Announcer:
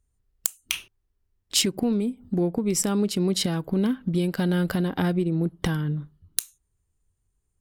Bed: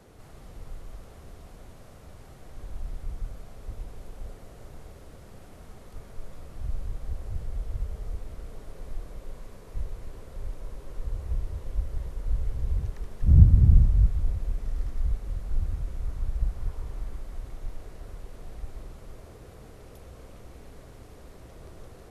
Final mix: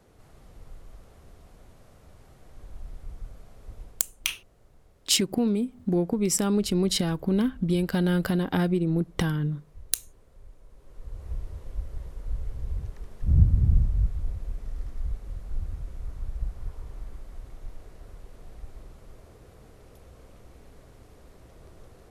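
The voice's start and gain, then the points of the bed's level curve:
3.55 s, -0.5 dB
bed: 3.84 s -5 dB
4.16 s -14 dB
10.68 s -14 dB
11.28 s -4 dB

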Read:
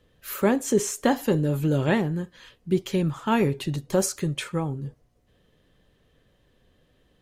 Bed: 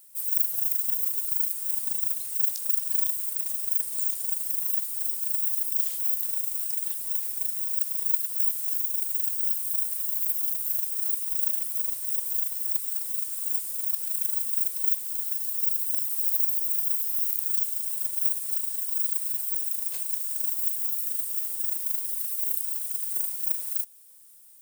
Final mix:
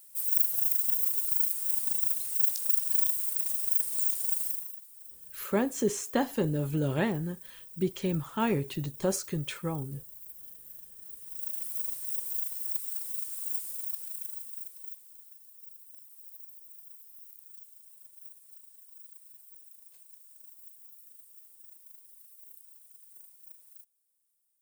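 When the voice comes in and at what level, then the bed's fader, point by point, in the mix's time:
5.10 s, -6.0 dB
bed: 4.46 s -1 dB
4.79 s -20 dB
11.04 s -20 dB
11.67 s -5.5 dB
13.69 s -5.5 dB
15.40 s -24 dB

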